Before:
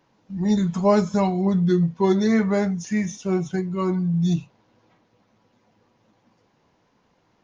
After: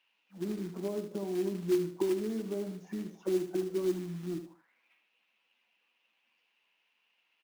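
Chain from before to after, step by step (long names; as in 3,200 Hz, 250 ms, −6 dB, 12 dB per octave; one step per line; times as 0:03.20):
Butterworth high-pass 160 Hz 36 dB per octave
downward compressor 4 to 1, threshold −26 dBFS, peak gain reduction 12 dB
envelope filter 330–2,800 Hz, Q 6.6, down, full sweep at −26 dBFS
floating-point word with a short mantissa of 2 bits
repeating echo 75 ms, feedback 30%, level −9.5 dB
level +6.5 dB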